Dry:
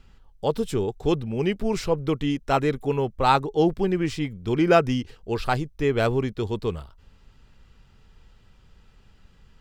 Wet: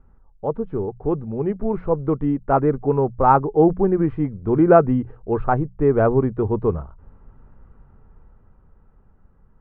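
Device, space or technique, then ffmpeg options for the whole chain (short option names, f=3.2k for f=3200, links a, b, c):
action camera in a waterproof case: -af "lowpass=f=1.3k:w=0.5412,lowpass=f=1.3k:w=1.3066,bandreject=f=60:t=h:w=6,bandreject=f=120:t=h:w=6,bandreject=f=180:t=h:w=6,dynaudnorm=f=370:g=11:m=11dB" -ar 44100 -c:a aac -b:a 128k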